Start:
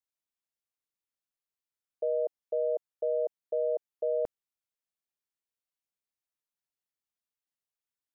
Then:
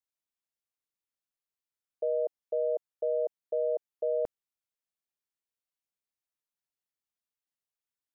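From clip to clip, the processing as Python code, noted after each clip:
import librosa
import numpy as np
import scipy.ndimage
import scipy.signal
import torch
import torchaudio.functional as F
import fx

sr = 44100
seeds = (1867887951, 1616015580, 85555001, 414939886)

y = x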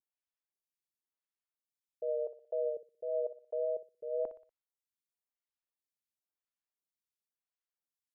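y = fx.vibrato(x, sr, rate_hz=1.7, depth_cents=40.0)
y = fx.echo_feedback(y, sr, ms=60, feedback_pct=43, wet_db=-11.5)
y = fx.stagger_phaser(y, sr, hz=0.96)
y = y * librosa.db_to_amplitude(-4.0)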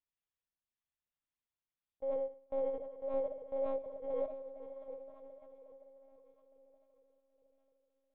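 y = np.where(x < 0.0, 10.0 ** (-3.0 / 20.0) * x, x)
y = fx.echo_diffused(y, sr, ms=655, feedback_pct=41, wet_db=-9)
y = fx.lpc_monotone(y, sr, seeds[0], pitch_hz=270.0, order=8)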